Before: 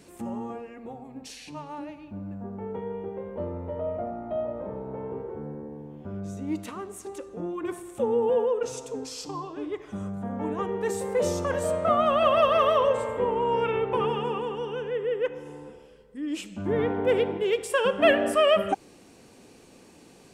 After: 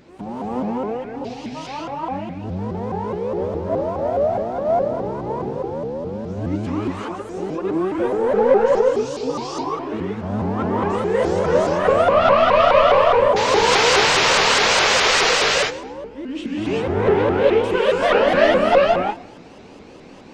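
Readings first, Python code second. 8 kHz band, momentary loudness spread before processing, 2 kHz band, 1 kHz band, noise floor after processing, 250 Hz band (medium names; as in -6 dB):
+14.5 dB, 18 LU, +13.5 dB, +10.0 dB, -41 dBFS, +8.0 dB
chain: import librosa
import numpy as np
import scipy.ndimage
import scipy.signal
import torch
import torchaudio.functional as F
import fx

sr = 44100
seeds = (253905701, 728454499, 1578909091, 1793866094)

y = fx.peak_eq(x, sr, hz=900.0, db=2.5, octaves=0.59)
y = fx.hum_notches(y, sr, base_hz=60, count=5)
y = fx.spec_paint(y, sr, seeds[0], shape='noise', start_s=13.36, length_s=1.95, low_hz=360.0, high_hz=7900.0, level_db=-18.0)
y = fx.quant_companded(y, sr, bits=6)
y = 10.0 ** (-21.0 / 20.0) * np.tanh(y / 10.0 ** (-21.0 / 20.0))
y = fx.air_absorb(y, sr, metres=160.0)
y = fx.echo_feedback(y, sr, ms=116, feedback_pct=40, wet_db=-19.0)
y = fx.rev_gated(y, sr, seeds[1], gate_ms=410, shape='rising', drr_db=-6.5)
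y = fx.vibrato_shape(y, sr, shape='saw_up', rate_hz=4.8, depth_cents=250.0)
y = y * 10.0 ** (4.5 / 20.0)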